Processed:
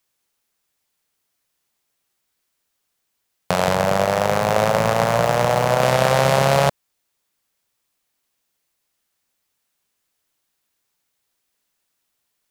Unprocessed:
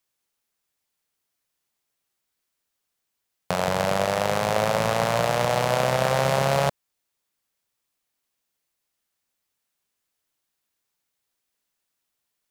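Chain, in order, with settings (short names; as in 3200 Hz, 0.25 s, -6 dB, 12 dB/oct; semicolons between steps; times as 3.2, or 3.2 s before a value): 3.75–5.82 median filter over 15 samples; gain +5.5 dB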